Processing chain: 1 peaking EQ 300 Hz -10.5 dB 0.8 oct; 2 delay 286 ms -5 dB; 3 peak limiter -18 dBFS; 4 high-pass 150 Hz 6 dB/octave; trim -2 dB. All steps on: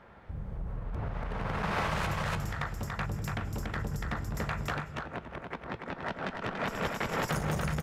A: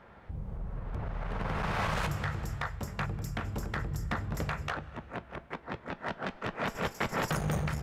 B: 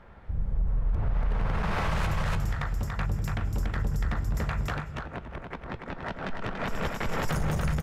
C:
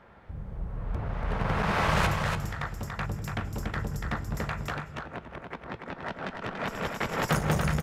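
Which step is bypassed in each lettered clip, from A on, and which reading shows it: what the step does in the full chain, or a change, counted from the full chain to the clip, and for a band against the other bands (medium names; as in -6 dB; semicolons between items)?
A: 2, momentary loudness spread change +2 LU; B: 4, 125 Hz band +5.0 dB; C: 3, mean gain reduction 1.5 dB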